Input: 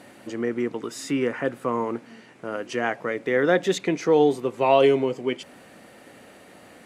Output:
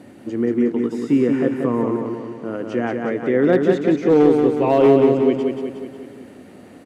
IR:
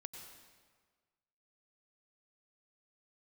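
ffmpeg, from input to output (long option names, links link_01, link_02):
-filter_complex "[0:a]equalizer=frequency=86:width_type=o:width=1.3:gain=12.5,acrossover=split=3200[link_01][link_02];[link_02]acompressor=threshold=-44dB:ratio=4:attack=1:release=60[link_03];[link_01][link_03]amix=inputs=2:normalize=0,equalizer=frequency=280:width_type=o:width=1.8:gain=11.5,volume=3.5dB,asoftclip=hard,volume=-3.5dB,asplit=2[link_04][link_05];[link_05]aecho=0:1:182|364|546|728|910|1092|1274:0.596|0.322|0.174|0.0938|0.0506|0.0274|0.0148[link_06];[link_04][link_06]amix=inputs=2:normalize=0,volume=-4dB"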